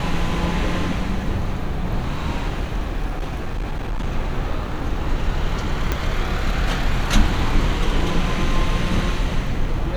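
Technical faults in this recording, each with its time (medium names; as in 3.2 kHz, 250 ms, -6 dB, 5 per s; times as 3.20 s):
3.09–4.07 s: clipped -20.5 dBFS
5.92 s: pop -7 dBFS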